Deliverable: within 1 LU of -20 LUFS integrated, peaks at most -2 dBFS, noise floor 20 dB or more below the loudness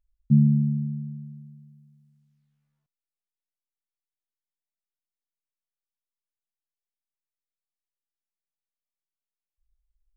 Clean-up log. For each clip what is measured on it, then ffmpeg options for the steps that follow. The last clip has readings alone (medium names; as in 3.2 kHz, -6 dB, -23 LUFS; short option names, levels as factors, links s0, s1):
loudness -23.0 LUFS; peak level -8.5 dBFS; loudness target -20.0 LUFS
-> -af "volume=1.41"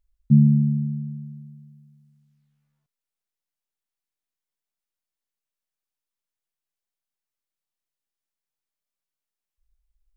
loudness -20.0 LUFS; peak level -5.5 dBFS; noise floor -89 dBFS